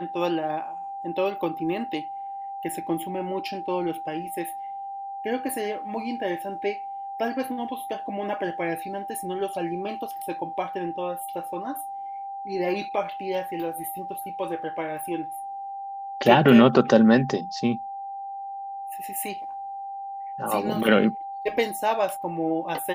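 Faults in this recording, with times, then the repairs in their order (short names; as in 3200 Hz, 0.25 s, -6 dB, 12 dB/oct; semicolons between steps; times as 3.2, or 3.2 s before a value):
tone 790 Hz -32 dBFS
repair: notch 790 Hz, Q 30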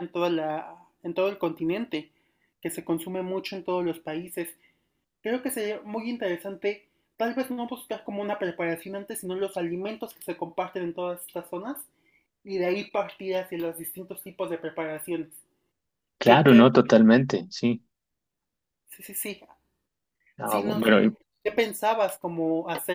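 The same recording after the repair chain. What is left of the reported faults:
none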